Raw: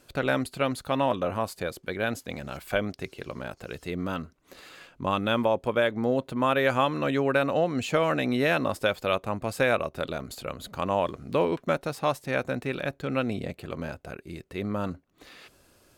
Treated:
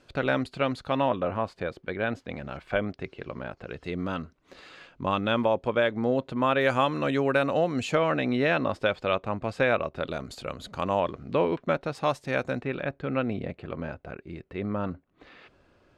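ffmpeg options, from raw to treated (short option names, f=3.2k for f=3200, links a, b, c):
-af "asetnsamples=n=441:p=0,asendcmd='1.09 lowpass f 2800;3.84 lowpass f 5000;6.61 lowpass f 8700;7.95 lowpass f 3800;10.11 lowpass f 7000;11 lowpass f 3800;11.95 lowpass f 6900;12.62 lowpass f 2600',lowpass=4.7k"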